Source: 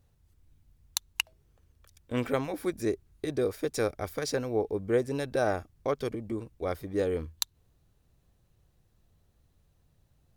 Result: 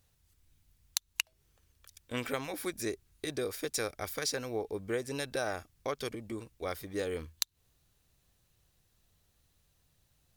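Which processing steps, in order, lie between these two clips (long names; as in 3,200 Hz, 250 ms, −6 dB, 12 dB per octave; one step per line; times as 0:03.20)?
tilt shelving filter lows −6.5 dB, about 1,300 Hz
downward compressor 3 to 1, threshold −30 dBFS, peak gain reduction 9.5 dB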